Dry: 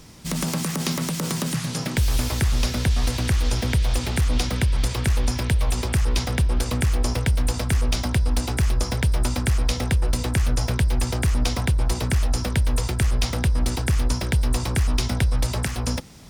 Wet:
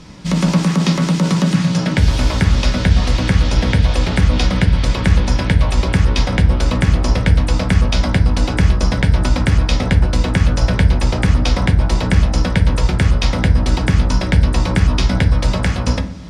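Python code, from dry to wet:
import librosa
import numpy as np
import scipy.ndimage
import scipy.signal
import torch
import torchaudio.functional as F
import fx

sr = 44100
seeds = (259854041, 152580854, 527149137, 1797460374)

y = scipy.signal.sosfilt(scipy.signal.butter(2, 5000.0, 'lowpass', fs=sr, output='sos'), x)
y = fx.rev_fdn(y, sr, rt60_s=0.54, lf_ratio=1.4, hf_ratio=0.45, size_ms=32.0, drr_db=3.5)
y = F.gain(torch.from_numpy(y), 6.5).numpy()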